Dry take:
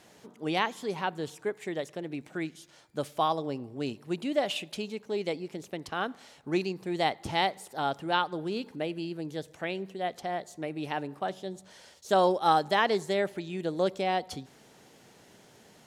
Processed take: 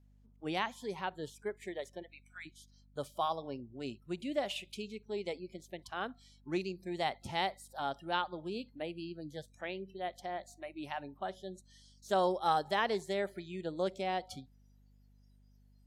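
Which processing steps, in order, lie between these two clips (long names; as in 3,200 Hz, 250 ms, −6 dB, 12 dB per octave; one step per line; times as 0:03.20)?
noise reduction from a noise print of the clip's start 24 dB
0:02.02–0:02.45: high-pass filter 530 Hz → 1,300 Hz 24 dB per octave
mains hum 50 Hz, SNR 25 dB
level −6.5 dB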